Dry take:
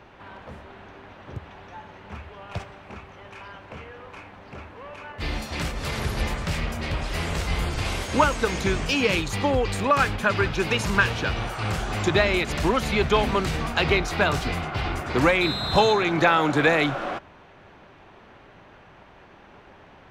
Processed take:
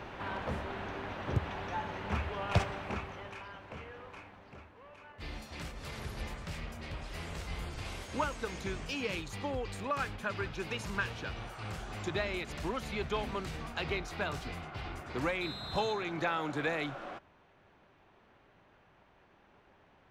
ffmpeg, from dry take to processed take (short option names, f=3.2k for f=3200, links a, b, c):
-af "volume=4.5dB,afade=t=out:st=2.78:d=0.67:silence=0.298538,afade=t=out:st=3.98:d=0.74:silence=0.398107"